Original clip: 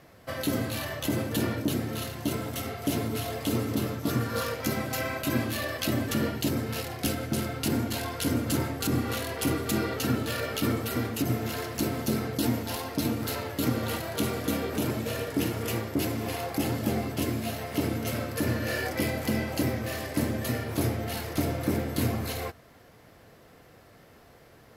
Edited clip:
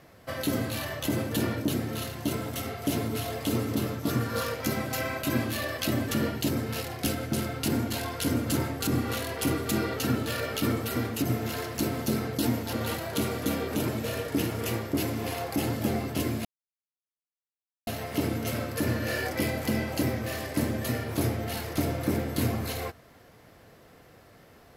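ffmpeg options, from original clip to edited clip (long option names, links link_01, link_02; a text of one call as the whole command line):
ffmpeg -i in.wav -filter_complex "[0:a]asplit=3[link_01][link_02][link_03];[link_01]atrim=end=12.732[link_04];[link_02]atrim=start=13.748:end=17.47,asetpts=PTS-STARTPTS,afade=type=out:start_time=3.718:duration=0.004:curve=hsin,apad=pad_dur=1.42[link_05];[link_03]atrim=start=17.47,asetpts=PTS-STARTPTS,afade=type=in:duration=0.004:curve=hsin[link_06];[link_05][link_06]concat=n=2:v=0:a=1[link_07];[link_04][link_07]acrossfade=duration=0.004:curve1=hsin:curve2=hsin" out.wav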